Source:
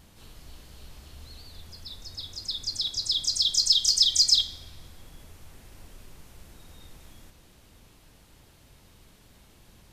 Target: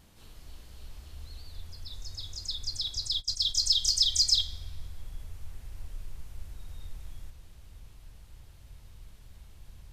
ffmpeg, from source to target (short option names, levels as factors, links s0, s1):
-filter_complex "[0:a]asettb=1/sr,asplit=3[s0][s1][s2];[s0]atrim=end=1.934[s3];[s1]atrim=start=1.93:end=2.55,asetpts=PTS-STARTPTS,afade=t=in:d=0.004:c=qsin,afade=t=out:st=0.616:d=0.004:c=qsin,equalizer=f=6700:t=o:w=0.4:g=7[s4];[s2]atrim=start=2.546[s5];[s3][s4]acrossfade=d=0.004:c1=hsin:c2=qsin[s6];[s6][s5]acrossfade=d=0.004:c1=qsin:c2=hsin,asplit=3[s7][s8][s9];[s7]afade=t=out:st=3.08:d=0.02[s10];[s8]agate=range=0.0891:threshold=0.0447:ratio=16:detection=peak,afade=t=in:st=3.08:d=0.02,afade=t=out:st=3.54:d=0.02[s11];[s9]afade=t=in:st=3.54:d=0.02[s12];[s10][s11][s12]amix=inputs=3:normalize=0,asubboost=boost=5.5:cutoff=100,volume=0.631"